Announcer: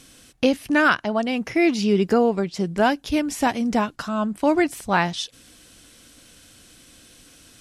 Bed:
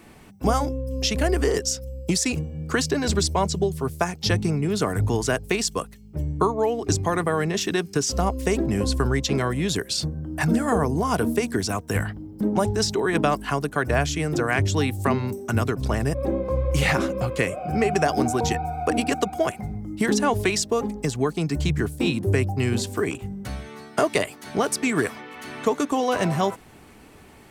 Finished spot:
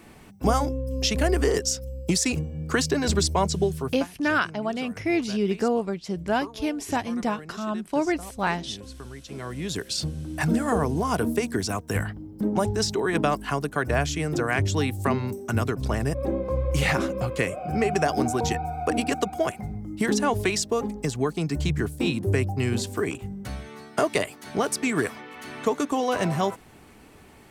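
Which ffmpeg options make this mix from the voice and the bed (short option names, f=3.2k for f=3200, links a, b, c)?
-filter_complex "[0:a]adelay=3500,volume=-5.5dB[a];[1:a]volume=16dB,afade=t=out:st=3.73:d=0.35:silence=0.125893,afade=t=in:st=9.26:d=0.76:silence=0.149624[b];[a][b]amix=inputs=2:normalize=0"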